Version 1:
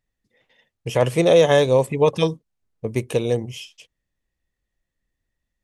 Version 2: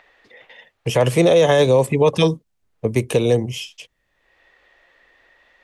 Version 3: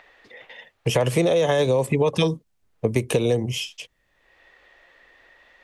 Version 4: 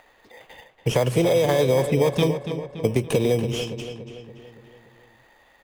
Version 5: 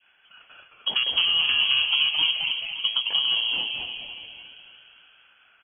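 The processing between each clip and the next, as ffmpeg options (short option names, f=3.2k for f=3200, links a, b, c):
-filter_complex "[0:a]acrossover=split=240|410|3500[a][b][c][d];[c]acompressor=mode=upward:threshold=-40dB:ratio=2.5[e];[a][b][e][d]amix=inputs=4:normalize=0,alimiter=level_in=11dB:limit=-1dB:release=50:level=0:latency=1,volume=-5dB"
-af "acompressor=threshold=-18dB:ratio=6,volume=1.5dB"
-filter_complex "[0:a]asplit=2[a][b];[b]acrusher=samples=16:mix=1:aa=0.000001,volume=-4dB[c];[a][c]amix=inputs=2:normalize=0,asplit=2[d][e];[e]adelay=285,lowpass=f=4k:p=1,volume=-9dB,asplit=2[f][g];[g]adelay=285,lowpass=f=4k:p=1,volume=0.54,asplit=2[h][i];[i]adelay=285,lowpass=f=4k:p=1,volume=0.54,asplit=2[j][k];[k]adelay=285,lowpass=f=4k:p=1,volume=0.54,asplit=2[l][m];[m]adelay=285,lowpass=f=4k:p=1,volume=0.54,asplit=2[n][o];[o]adelay=285,lowpass=f=4k:p=1,volume=0.54[p];[d][f][h][j][l][n][p]amix=inputs=7:normalize=0,volume=-4dB"
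-filter_complex "[0:a]adynamicequalizer=threshold=0.00891:dfrequency=2000:dqfactor=0.75:tfrequency=2000:tqfactor=0.75:attack=5:release=100:ratio=0.375:range=1.5:mode=cutabove:tftype=bell,lowpass=f=2.9k:t=q:w=0.5098,lowpass=f=2.9k:t=q:w=0.6013,lowpass=f=2.9k:t=q:w=0.9,lowpass=f=2.9k:t=q:w=2.563,afreqshift=-3400,asplit=6[a][b][c][d][e][f];[b]adelay=216,afreqshift=-140,volume=-4.5dB[g];[c]adelay=432,afreqshift=-280,volume=-12.5dB[h];[d]adelay=648,afreqshift=-420,volume=-20.4dB[i];[e]adelay=864,afreqshift=-560,volume=-28.4dB[j];[f]adelay=1080,afreqshift=-700,volume=-36.3dB[k];[a][g][h][i][j][k]amix=inputs=6:normalize=0,volume=-4dB"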